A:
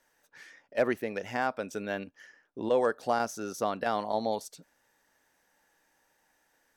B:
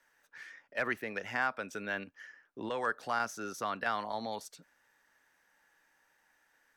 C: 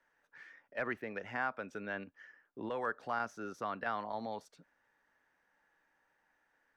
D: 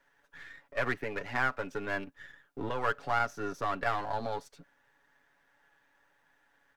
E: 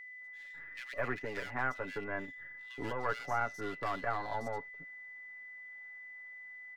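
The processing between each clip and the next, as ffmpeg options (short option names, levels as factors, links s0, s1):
-filter_complex "[0:a]acrossover=split=180|1000[s0][s1][s2];[s1]alimiter=level_in=1.5:limit=0.0631:level=0:latency=1,volume=0.668[s3];[s2]equalizer=f=1400:w=0.58:g=9[s4];[s0][s3][s4]amix=inputs=3:normalize=0,volume=0.562"
-af "lowpass=f=1500:p=1,volume=0.841"
-af "aeval=exprs='if(lt(val(0),0),0.447*val(0),val(0))':c=same,aecho=1:1:7.1:0.54,volume=2.37"
-filter_complex "[0:a]acrossover=split=2200[s0][s1];[s0]adelay=210[s2];[s2][s1]amix=inputs=2:normalize=0,aeval=exprs='val(0)+0.00708*sin(2*PI*2000*n/s)':c=same,volume=0.668"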